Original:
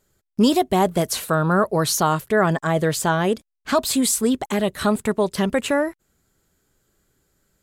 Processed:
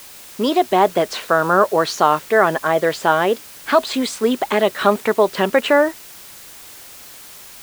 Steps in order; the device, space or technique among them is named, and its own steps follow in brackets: dictaphone (band-pass 370–3300 Hz; level rider; wow and flutter; white noise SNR 21 dB)

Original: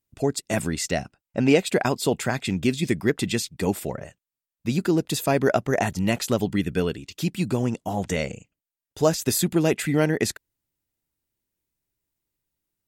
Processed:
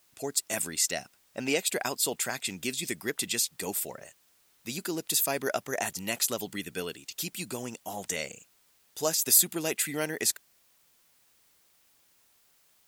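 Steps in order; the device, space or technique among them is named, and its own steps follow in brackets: turntable without a phono preamp (RIAA curve recording; white noise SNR 33 dB); trim -7.5 dB

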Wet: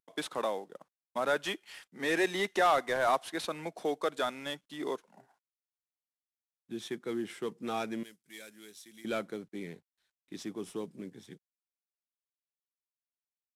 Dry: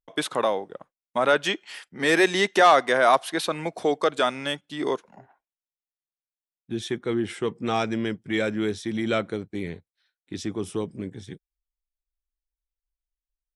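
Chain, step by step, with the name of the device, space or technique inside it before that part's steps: early wireless headset (high-pass 150 Hz 24 dB/octave; CVSD coder 64 kbps); 8.03–9.05 s: pre-emphasis filter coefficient 0.9; trim -9 dB

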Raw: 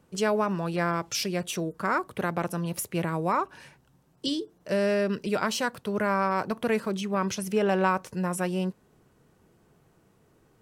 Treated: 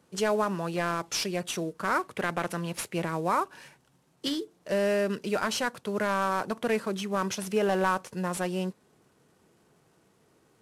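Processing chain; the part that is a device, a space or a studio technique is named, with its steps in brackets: early wireless headset (high-pass 190 Hz 6 dB/octave; CVSD coder 64 kbps); 1.99–2.94 s: dynamic bell 2.1 kHz, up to +5 dB, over -47 dBFS, Q 1

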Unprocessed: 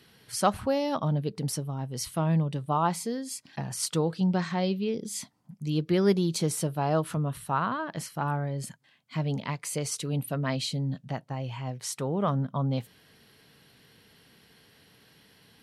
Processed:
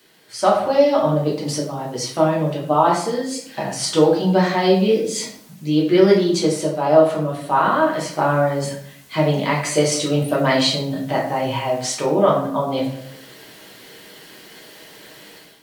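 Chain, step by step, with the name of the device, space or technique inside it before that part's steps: filmed off a television (band-pass 260–6700 Hz; peaking EQ 600 Hz +7 dB 0.25 oct; reverberation RT60 0.70 s, pre-delay 3 ms, DRR -4.5 dB; white noise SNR 34 dB; level rider gain up to 12 dB; trim -1 dB; AAC 96 kbps 44.1 kHz)

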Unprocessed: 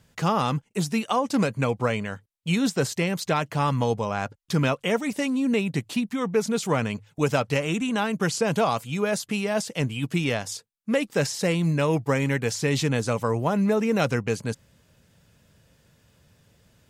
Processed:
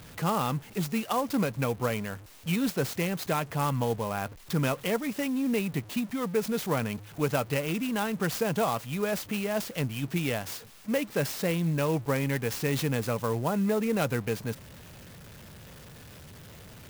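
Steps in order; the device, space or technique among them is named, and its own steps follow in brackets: early CD player with a faulty converter (jump at every zero crossing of -37.5 dBFS; sampling jitter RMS 0.034 ms); trim -5 dB

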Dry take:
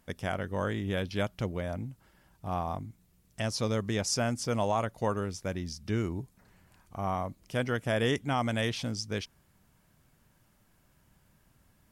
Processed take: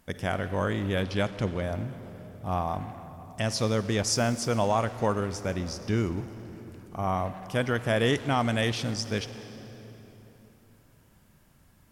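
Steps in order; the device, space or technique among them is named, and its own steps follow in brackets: saturated reverb return (on a send at -7 dB: reverberation RT60 3.1 s, pre-delay 35 ms + saturation -34 dBFS, distortion -8 dB); 1.04–1.62 s: on the sum: low-pass 11 kHz 24 dB/octave; trim +3.5 dB

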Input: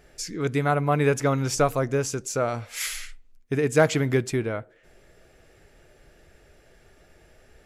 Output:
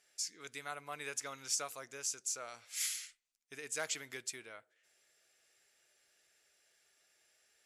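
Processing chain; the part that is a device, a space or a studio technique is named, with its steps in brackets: piezo pickup straight into a mixer (low-pass 8.9 kHz 12 dB/octave; differentiator); trim -2.5 dB

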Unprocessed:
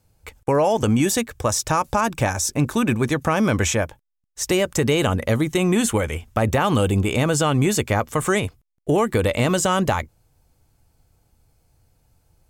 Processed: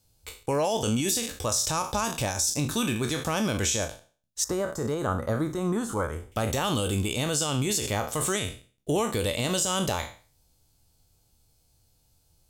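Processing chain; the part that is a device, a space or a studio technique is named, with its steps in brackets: spectral sustain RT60 0.39 s; over-bright horn tweeter (resonant high shelf 2.7 kHz +8 dB, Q 1.5; peak limiter -8.5 dBFS, peak gain reduction 9 dB); 4.44–6.32 s: resonant high shelf 1.9 kHz -12 dB, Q 3; trim -7.5 dB

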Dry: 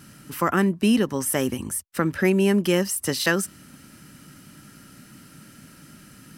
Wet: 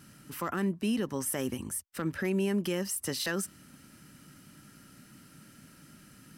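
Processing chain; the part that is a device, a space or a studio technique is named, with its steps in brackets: clipper into limiter (hard clipper -10 dBFS, distortion -28 dB; peak limiter -15 dBFS, peak gain reduction 5 dB); trim -7 dB

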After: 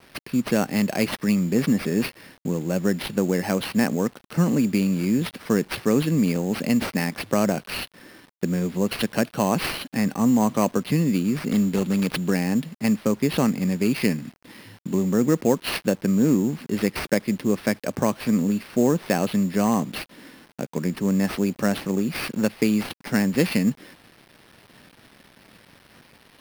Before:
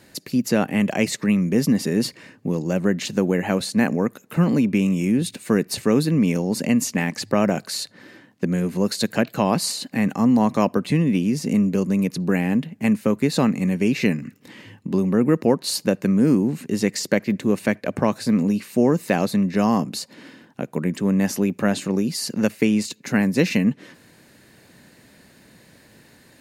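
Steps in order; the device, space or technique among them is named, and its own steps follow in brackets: 11.52–12.31 s: tone controls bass 0 dB, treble +13 dB; early 8-bit sampler (sample-rate reducer 7.1 kHz, jitter 0%; bit crusher 8-bit); trim -2 dB

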